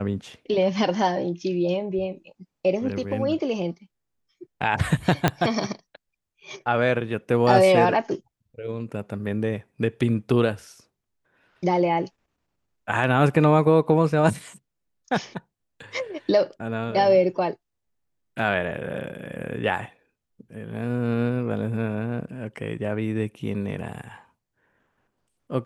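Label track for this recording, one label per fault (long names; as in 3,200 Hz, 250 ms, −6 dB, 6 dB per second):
5.280000	5.280000	click −4 dBFS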